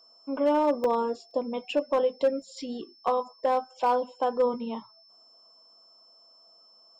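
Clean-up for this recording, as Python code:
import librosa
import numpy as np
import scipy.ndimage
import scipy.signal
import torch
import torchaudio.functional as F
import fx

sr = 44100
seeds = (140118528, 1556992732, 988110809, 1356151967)

y = fx.fix_declip(x, sr, threshold_db=-17.0)
y = fx.notch(y, sr, hz=5300.0, q=30.0)
y = fx.fix_interpolate(y, sr, at_s=(0.84, 1.31, 2.42), length_ms=2.1)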